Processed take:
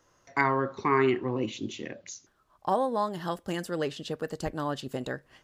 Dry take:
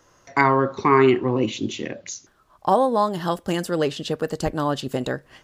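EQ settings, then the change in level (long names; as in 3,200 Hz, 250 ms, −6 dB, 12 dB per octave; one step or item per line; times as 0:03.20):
dynamic equaliser 1,800 Hz, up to +4 dB, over −38 dBFS, Q 2.5
−8.5 dB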